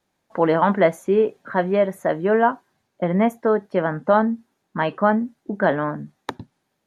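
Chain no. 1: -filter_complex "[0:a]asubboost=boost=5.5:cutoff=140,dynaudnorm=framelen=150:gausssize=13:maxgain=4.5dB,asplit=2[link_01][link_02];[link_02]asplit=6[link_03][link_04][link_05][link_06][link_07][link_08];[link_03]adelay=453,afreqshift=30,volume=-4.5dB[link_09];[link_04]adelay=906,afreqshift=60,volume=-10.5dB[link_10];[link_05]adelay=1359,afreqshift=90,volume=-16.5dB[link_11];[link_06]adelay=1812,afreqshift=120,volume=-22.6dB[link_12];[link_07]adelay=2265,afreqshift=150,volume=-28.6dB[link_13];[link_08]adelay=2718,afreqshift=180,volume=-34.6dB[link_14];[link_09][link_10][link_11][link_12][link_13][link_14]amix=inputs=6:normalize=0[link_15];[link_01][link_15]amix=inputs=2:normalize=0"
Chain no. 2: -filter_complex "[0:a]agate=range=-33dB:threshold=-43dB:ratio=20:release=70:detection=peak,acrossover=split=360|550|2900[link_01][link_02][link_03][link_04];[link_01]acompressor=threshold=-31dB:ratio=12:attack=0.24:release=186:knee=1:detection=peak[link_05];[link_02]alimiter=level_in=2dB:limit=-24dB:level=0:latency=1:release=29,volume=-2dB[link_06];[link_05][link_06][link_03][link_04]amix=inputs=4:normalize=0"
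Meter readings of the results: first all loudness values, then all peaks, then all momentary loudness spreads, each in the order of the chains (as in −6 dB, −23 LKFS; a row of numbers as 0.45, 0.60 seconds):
−18.0, −24.0 LKFS; −2.0, −7.0 dBFS; 6, 14 LU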